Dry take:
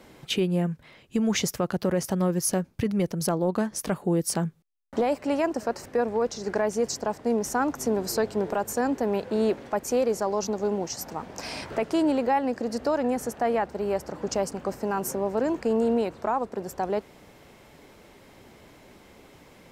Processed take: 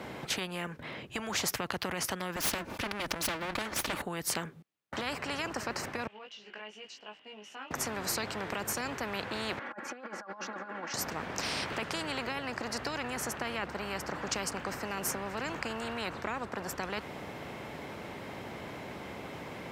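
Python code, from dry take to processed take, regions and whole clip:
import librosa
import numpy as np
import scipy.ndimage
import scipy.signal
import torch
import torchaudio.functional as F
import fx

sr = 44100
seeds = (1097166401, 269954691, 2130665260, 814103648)

y = fx.chain(x, sr, fx.lower_of_two(delay_ms=3.4),
    fx.sustainer(db_per_s=100.0), at=(2.36, 4.02))
y = fx.chain(y, sr, fx.bandpass_q(hz=2900.0, q=12.0),
    fx.doubler(ms=19.0, db=-2.5), at=(6.07, 7.71))
y = fx.chain(y, sr, fx.bandpass_q(hz=1500.0, q=3.4),
    fx.over_compress(threshold_db=-48.0, ratio=-0.5),
    fx.comb(ms=3.6, depth=0.95), at=(9.59, 10.94))
y = scipy.signal.sosfilt(scipy.signal.butter(2, 180.0, 'highpass', fs=sr, output='sos'), y)
y = fx.bass_treble(y, sr, bass_db=12, treble_db=-10)
y = fx.spectral_comp(y, sr, ratio=4.0)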